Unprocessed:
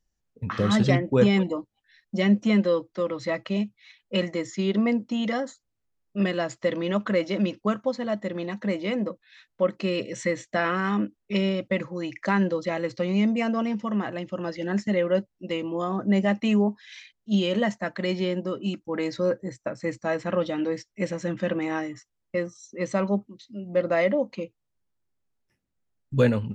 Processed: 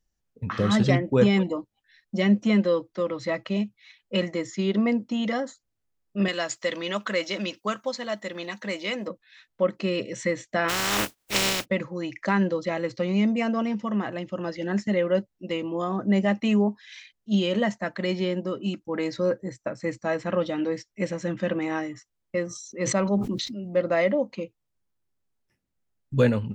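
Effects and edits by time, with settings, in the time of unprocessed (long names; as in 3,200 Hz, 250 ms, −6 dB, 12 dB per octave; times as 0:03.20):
0:06.28–0:09.08: spectral tilt +3.5 dB per octave
0:10.68–0:11.64: compressing power law on the bin magnitudes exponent 0.25
0:22.46–0:23.73: level that may fall only so fast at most 37 dB per second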